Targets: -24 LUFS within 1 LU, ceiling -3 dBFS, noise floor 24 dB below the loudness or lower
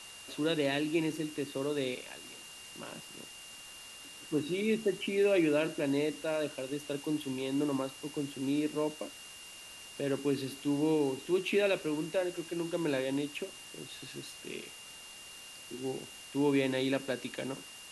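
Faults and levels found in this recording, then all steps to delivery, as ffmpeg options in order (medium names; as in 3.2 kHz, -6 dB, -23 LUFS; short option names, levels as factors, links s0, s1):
steady tone 2.8 kHz; tone level -50 dBFS; noise floor -50 dBFS; noise floor target -58 dBFS; loudness -33.5 LUFS; peak level -17.0 dBFS; loudness target -24.0 LUFS
-> -af "bandreject=f=2800:w=30"
-af "afftdn=nr=8:nf=-50"
-af "volume=2.99"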